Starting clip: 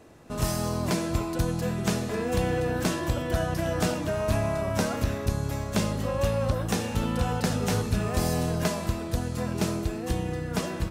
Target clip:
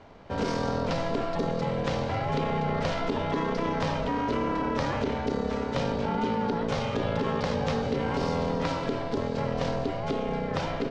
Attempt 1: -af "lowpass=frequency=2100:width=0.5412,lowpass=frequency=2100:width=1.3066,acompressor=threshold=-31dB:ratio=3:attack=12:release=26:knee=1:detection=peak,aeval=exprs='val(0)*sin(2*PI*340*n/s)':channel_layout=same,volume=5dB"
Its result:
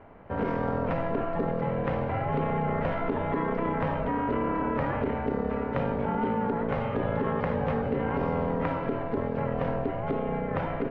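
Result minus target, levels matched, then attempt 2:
4,000 Hz band −13.0 dB
-af "lowpass=frequency=4800:width=0.5412,lowpass=frequency=4800:width=1.3066,acompressor=threshold=-31dB:ratio=3:attack=12:release=26:knee=1:detection=peak,aeval=exprs='val(0)*sin(2*PI*340*n/s)':channel_layout=same,volume=5dB"

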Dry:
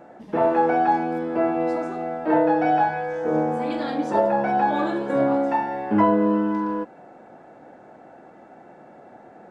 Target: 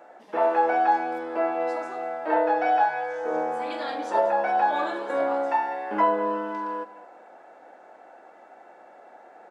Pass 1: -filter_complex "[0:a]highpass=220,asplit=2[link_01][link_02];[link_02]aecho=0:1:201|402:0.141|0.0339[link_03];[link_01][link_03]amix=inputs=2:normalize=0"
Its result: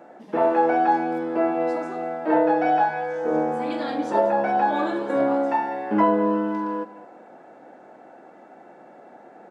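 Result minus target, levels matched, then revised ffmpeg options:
250 Hz band +7.5 dB
-filter_complex "[0:a]highpass=560,asplit=2[link_01][link_02];[link_02]aecho=0:1:201|402:0.141|0.0339[link_03];[link_01][link_03]amix=inputs=2:normalize=0"

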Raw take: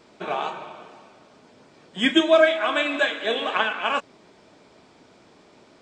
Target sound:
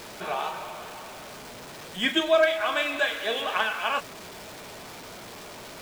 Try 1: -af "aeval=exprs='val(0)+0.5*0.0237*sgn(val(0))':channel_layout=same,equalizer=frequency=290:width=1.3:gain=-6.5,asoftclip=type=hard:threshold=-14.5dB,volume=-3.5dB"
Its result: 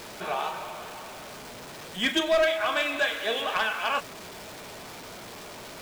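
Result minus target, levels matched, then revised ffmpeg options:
hard clipping: distortion +17 dB
-af "aeval=exprs='val(0)+0.5*0.0237*sgn(val(0))':channel_layout=same,equalizer=frequency=290:width=1.3:gain=-6.5,asoftclip=type=hard:threshold=-8dB,volume=-3.5dB"

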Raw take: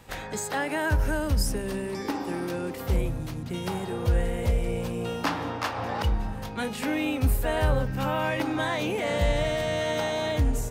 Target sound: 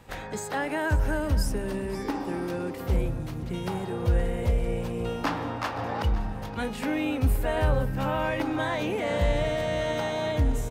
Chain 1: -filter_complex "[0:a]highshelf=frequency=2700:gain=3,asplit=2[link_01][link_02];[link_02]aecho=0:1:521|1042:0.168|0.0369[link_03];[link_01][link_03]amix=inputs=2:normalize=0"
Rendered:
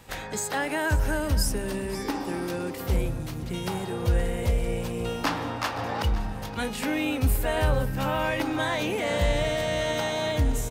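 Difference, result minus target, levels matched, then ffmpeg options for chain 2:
4,000 Hz band +4.5 dB
-filter_complex "[0:a]highshelf=frequency=2700:gain=-5.5,asplit=2[link_01][link_02];[link_02]aecho=0:1:521|1042:0.168|0.0369[link_03];[link_01][link_03]amix=inputs=2:normalize=0"

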